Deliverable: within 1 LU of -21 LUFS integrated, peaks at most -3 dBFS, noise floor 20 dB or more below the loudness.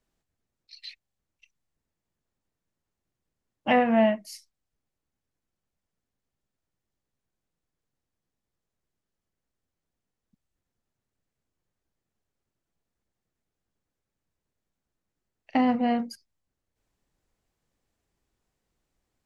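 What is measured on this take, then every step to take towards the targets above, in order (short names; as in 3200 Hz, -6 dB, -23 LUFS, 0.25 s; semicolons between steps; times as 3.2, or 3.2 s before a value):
loudness -25.0 LUFS; peak -10.5 dBFS; loudness target -21.0 LUFS
-> gain +4 dB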